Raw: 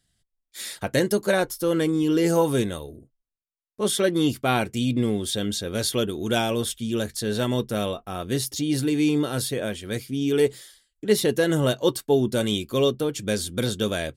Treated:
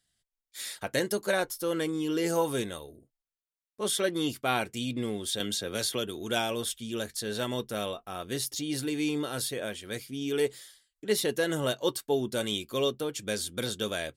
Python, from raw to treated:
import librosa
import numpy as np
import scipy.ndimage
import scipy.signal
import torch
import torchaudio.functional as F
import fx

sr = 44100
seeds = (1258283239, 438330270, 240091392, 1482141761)

y = fx.low_shelf(x, sr, hz=360.0, db=-9.0)
y = fx.band_squash(y, sr, depth_pct=70, at=(5.4, 6.19))
y = F.gain(torch.from_numpy(y), -3.5).numpy()